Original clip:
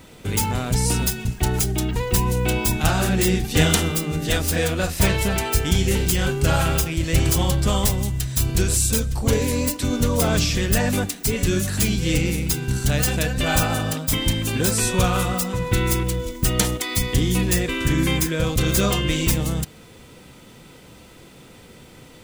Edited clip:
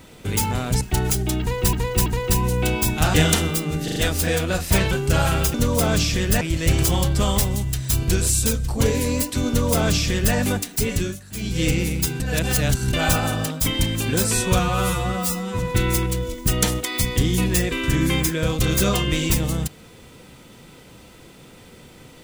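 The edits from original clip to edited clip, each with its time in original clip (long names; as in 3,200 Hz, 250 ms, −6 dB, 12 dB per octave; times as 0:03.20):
0:00.81–0:01.30: remove
0:01.89–0:02.22: repeat, 3 plays
0:02.97–0:03.55: remove
0:04.25: stutter 0.04 s, 4 plays
0:05.20–0:06.25: remove
0:09.95–0:10.82: duplicate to 0:06.88
0:11.39–0:12.06: duck −18.5 dB, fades 0.28 s
0:12.67–0:13.40: reverse
0:15.06–0:15.56: time-stretch 2×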